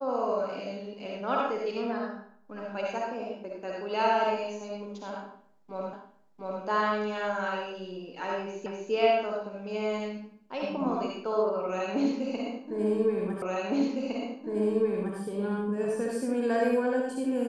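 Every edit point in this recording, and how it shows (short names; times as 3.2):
5.93 repeat of the last 0.7 s
8.66 repeat of the last 0.25 s
13.42 repeat of the last 1.76 s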